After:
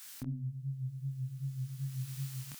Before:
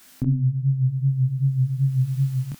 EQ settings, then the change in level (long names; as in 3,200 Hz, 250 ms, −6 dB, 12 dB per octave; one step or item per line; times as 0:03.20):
bass and treble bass −8 dB, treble +3 dB
low-shelf EQ 170 Hz −9.5 dB
parametric band 410 Hz −10.5 dB 2 octaves
−1.5 dB